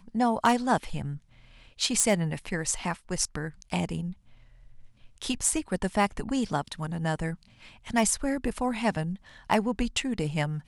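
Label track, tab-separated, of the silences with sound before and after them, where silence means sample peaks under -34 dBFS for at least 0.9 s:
4.120000	5.220000	silence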